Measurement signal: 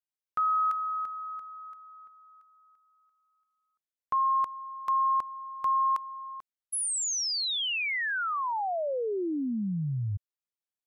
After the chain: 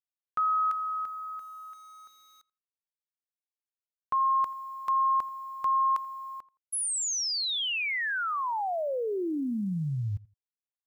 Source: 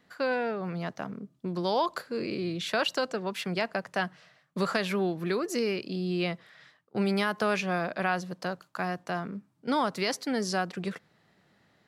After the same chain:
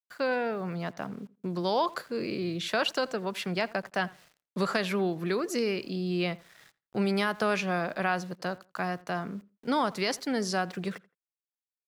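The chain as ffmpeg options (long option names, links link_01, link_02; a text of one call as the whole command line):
ffmpeg -i in.wav -filter_complex "[0:a]aeval=exprs='val(0)*gte(abs(val(0)),0.00211)':channel_layout=same,asplit=2[link_01][link_02];[link_02]adelay=84,lowpass=frequency=2700:poles=1,volume=-21dB,asplit=2[link_03][link_04];[link_04]adelay=84,lowpass=frequency=2700:poles=1,volume=0.21[link_05];[link_01][link_03][link_05]amix=inputs=3:normalize=0" out.wav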